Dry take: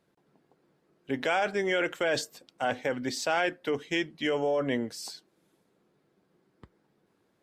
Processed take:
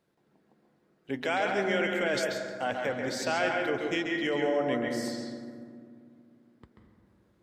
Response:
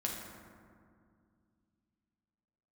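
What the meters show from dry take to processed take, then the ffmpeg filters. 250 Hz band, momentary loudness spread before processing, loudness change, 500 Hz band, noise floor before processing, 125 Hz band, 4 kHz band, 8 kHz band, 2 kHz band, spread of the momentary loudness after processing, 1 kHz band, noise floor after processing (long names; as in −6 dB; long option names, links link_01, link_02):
+1.5 dB, 9 LU, 0.0 dB, 0.0 dB, −72 dBFS, +0.5 dB, −1.0 dB, −2.0 dB, +0.5 dB, 12 LU, 0.0 dB, −70 dBFS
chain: -filter_complex "[0:a]asplit=2[link_01][link_02];[link_02]equalizer=frequency=1900:width_type=o:width=0.26:gain=5[link_03];[1:a]atrim=start_sample=2205,lowpass=6500,adelay=136[link_04];[link_03][link_04]afir=irnorm=-1:irlink=0,volume=-4.5dB[link_05];[link_01][link_05]amix=inputs=2:normalize=0,volume=-2.5dB"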